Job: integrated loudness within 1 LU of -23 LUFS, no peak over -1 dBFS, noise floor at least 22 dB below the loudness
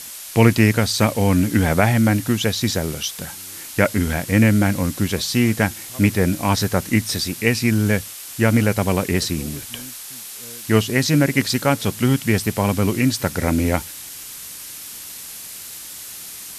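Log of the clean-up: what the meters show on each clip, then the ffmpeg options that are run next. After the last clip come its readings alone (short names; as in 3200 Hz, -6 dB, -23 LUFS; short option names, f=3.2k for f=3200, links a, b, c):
noise floor -35 dBFS; noise floor target -41 dBFS; loudness -19.0 LUFS; peak -1.0 dBFS; loudness target -23.0 LUFS
-> -af "afftdn=nr=6:nf=-35"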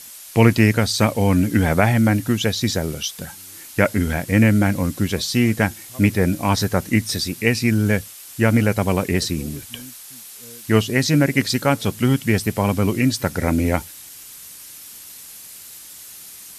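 noise floor -40 dBFS; noise floor target -42 dBFS
-> -af "afftdn=nr=6:nf=-40"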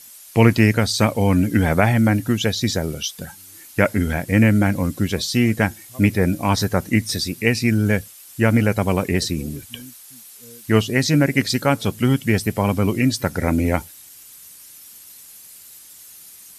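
noise floor -44 dBFS; loudness -19.5 LUFS; peak -1.0 dBFS; loudness target -23.0 LUFS
-> -af "volume=-3.5dB"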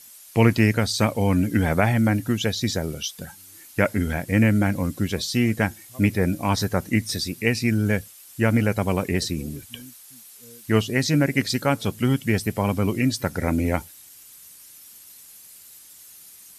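loudness -23.0 LUFS; peak -4.5 dBFS; noise floor -47 dBFS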